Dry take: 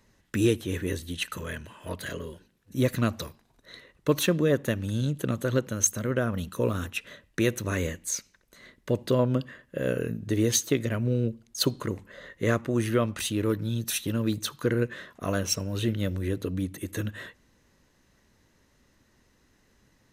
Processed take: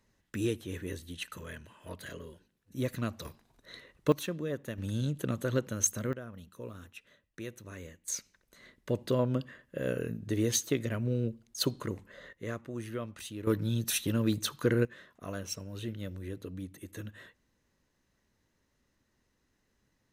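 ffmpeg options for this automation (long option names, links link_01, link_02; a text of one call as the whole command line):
ffmpeg -i in.wav -af "asetnsamples=nb_out_samples=441:pad=0,asendcmd='3.25 volume volume -2dB;4.12 volume volume -12dB;4.78 volume volume -4.5dB;6.13 volume volume -17dB;8.08 volume volume -5dB;12.33 volume volume -13dB;13.47 volume volume -1.5dB;14.85 volume volume -11dB',volume=-8.5dB" out.wav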